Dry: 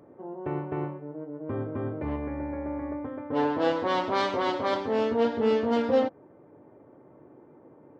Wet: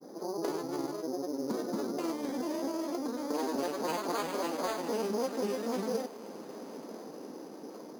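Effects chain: steep high-pass 170 Hz 72 dB/oct; compressor 6:1, threshold -38 dBFS, peak gain reduction 18.5 dB; grains, spray 34 ms, pitch spread up and down by 3 st; on a send: diffused feedback echo 1.043 s, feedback 54%, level -14.5 dB; on the sum: careless resampling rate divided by 8×, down none, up hold; Doppler distortion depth 0.12 ms; gain +7.5 dB

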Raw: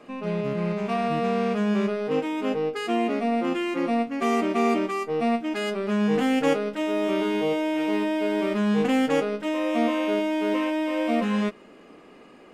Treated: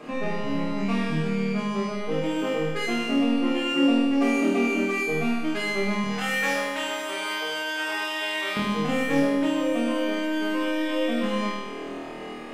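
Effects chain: 6.04–8.57 HPF 980 Hz 12 dB/oct; compressor 3:1, threshold -35 dBFS, peak gain reduction 12.5 dB; flutter echo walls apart 4.3 m, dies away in 1.5 s; reverb RT60 0.75 s, pre-delay 7 ms, DRR 7 dB; gain +5.5 dB

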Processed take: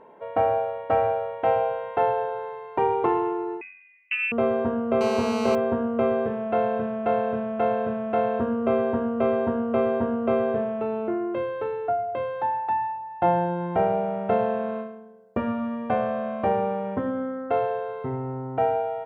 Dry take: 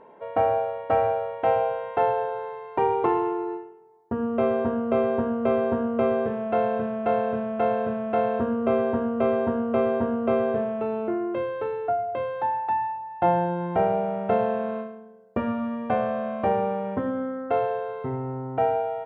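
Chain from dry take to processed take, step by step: 3.61–4.32 inverted band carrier 2900 Hz; 5.01–5.55 GSM buzz -29 dBFS

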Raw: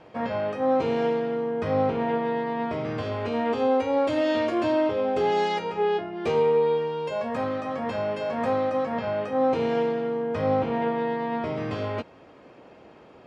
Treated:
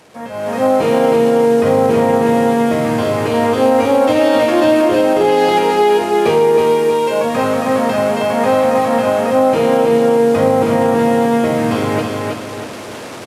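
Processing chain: delta modulation 64 kbps, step -39 dBFS; HPF 100 Hz; on a send: feedback echo 0.318 s, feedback 42%, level -3.5 dB; on the sum: limiter -15 dBFS, peak gain reduction 4.5 dB; AGC gain up to 15 dB; gain -1.5 dB

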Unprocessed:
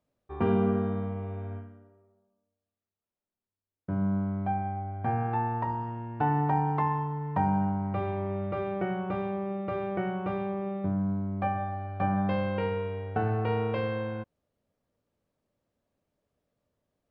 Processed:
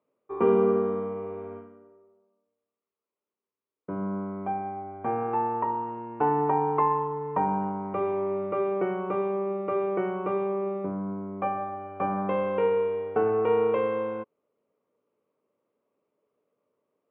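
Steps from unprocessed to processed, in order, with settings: speaker cabinet 290–2500 Hz, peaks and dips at 430 Hz +8 dB, 720 Hz -6 dB, 1100 Hz +5 dB, 1700 Hz -10 dB; gain +4 dB

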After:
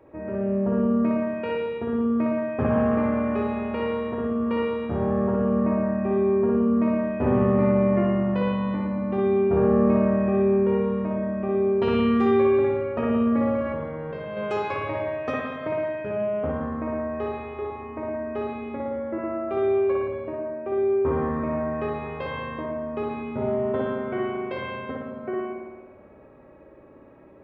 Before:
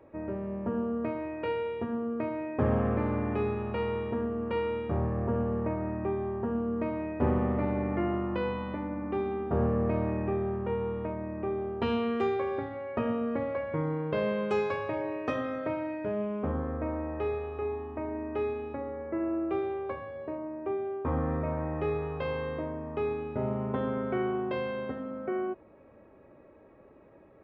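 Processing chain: 13.54–14.37 negative-ratio compressor -36 dBFS, ratio -1; spring tank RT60 1.3 s, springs 56 ms, chirp 35 ms, DRR -2 dB; gain +1.5 dB

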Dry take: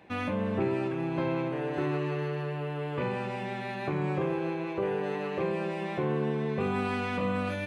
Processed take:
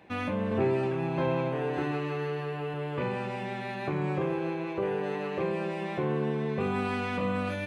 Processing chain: 0.49–2.74 doubler 23 ms -4.5 dB

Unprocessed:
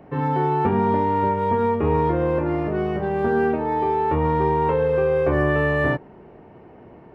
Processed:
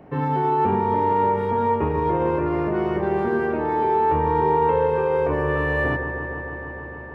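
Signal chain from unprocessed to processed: limiter -14.5 dBFS, peak gain reduction 6.5 dB; on a send: dark delay 0.152 s, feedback 84%, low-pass 1900 Hz, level -8 dB

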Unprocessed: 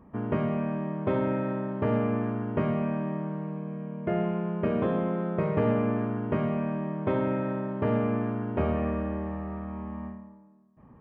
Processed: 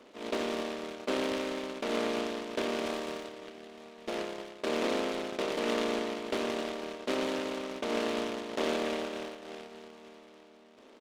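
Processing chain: per-bin compression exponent 0.2; steep high-pass 240 Hz 48 dB/oct; notches 60/120/180/240/300/360/420 Hz; gate -23 dBFS, range -20 dB; 2.86–3.29 high shelf 2200 Hz +9.5 dB; echo 0.899 s -22.5 dB; noise-modulated delay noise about 2100 Hz, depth 0.11 ms; gain -6 dB

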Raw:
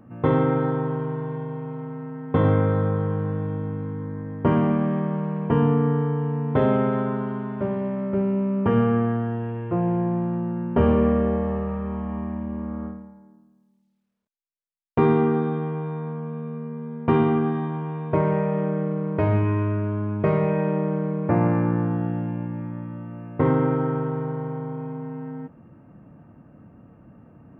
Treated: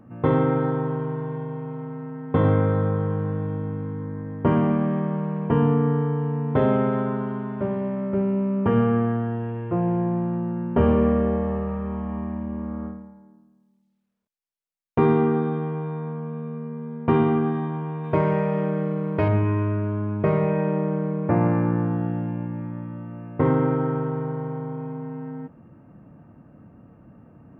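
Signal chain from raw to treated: high shelf 3000 Hz -2.5 dB, from 18.04 s +9.5 dB, from 19.28 s -2.5 dB

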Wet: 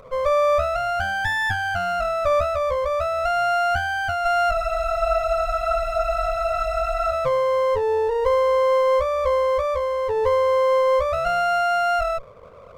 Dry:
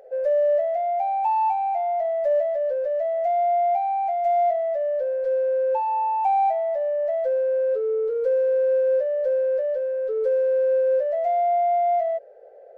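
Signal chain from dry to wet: minimum comb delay 0.51 ms; spectral freeze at 4.55, 2.57 s; gain +4.5 dB

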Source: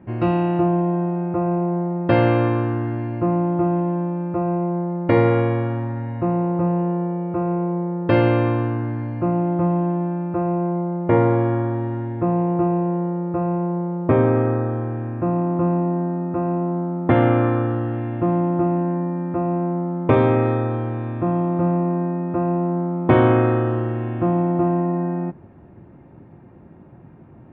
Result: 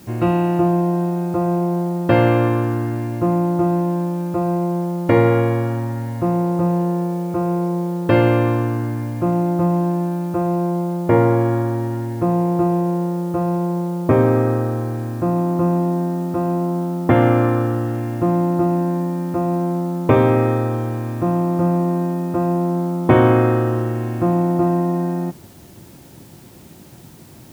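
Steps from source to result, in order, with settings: added noise white -52 dBFS; gain +2 dB

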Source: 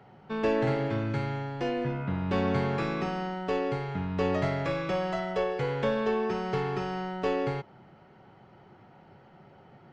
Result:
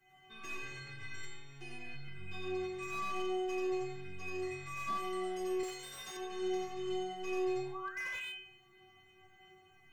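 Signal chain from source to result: 7.45–8.14 painted sound rise 540–3100 Hz -35 dBFS; EQ curve 250 Hz 0 dB, 480 Hz -14 dB, 1100 Hz -5 dB, 2100 Hz +6 dB, 4700 Hz +4 dB, 7300 Hz +14 dB; reverb RT60 0.50 s, pre-delay 84 ms, DRR -4 dB; limiter -20.5 dBFS, peak gain reduction 8.5 dB; flange 0.25 Hz, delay 6.3 ms, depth 6.7 ms, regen -36%; metallic resonator 370 Hz, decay 0.82 s, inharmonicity 0.008; 5.63–6.17 tone controls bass -13 dB, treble +14 dB; slew limiter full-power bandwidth 4.1 Hz; gain +15.5 dB

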